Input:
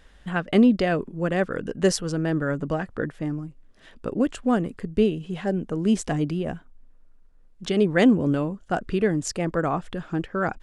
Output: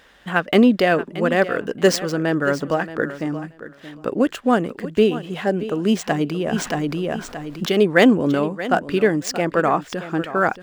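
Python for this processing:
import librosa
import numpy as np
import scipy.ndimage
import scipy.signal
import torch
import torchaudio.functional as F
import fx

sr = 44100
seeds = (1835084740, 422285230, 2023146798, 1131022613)

y = scipy.signal.medfilt(x, 5)
y = fx.highpass(y, sr, hz=410.0, slope=6)
y = fx.echo_feedback(y, sr, ms=627, feedback_pct=15, wet_db=-14.0)
y = fx.env_flatten(y, sr, amount_pct=50, at=(6.52, 7.65), fade=0.02)
y = F.gain(torch.from_numpy(y), 8.5).numpy()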